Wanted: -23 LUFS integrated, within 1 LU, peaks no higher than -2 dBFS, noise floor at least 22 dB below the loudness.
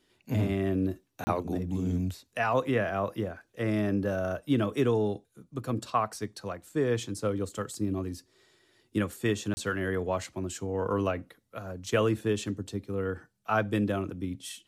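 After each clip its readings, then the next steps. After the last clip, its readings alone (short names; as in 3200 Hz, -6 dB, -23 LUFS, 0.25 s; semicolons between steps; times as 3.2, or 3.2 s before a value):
dropouts 2; longest dropout 30 ms; loudness -31.0 LUFS; peak -12.5 dBFS; loudness target -23.0 LUFS
-> interpolate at 1.24/9.54, 30 ms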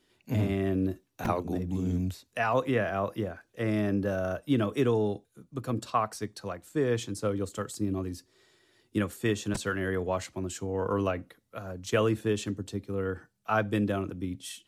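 dropouts 0; loudness -31.0 LUFS; peak -12.5 dBFS; loudness target -23.0 LUFS
-> gain +8 dB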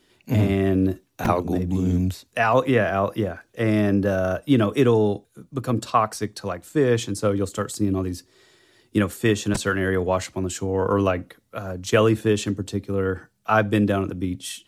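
loudness -23.0 LUFS; peak -4.5 dBFS; noise floor -65 dBFS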